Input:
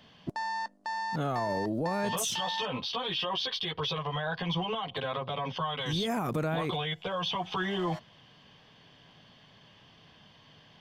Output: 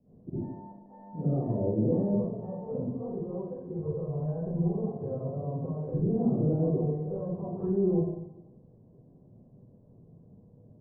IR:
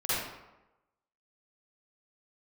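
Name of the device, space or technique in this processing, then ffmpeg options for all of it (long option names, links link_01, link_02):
next room: -filter_complex "[0:a]lowpass=frequency=460:width=0.5412,lowpass=frequency=460:width=1.3066[link_01];[1:a]atrim=start_sample=2205[link_02];[link_01][link_02]afir=irnorm=-1:irlink=0,lowpass=2800,volume=-2.5dB"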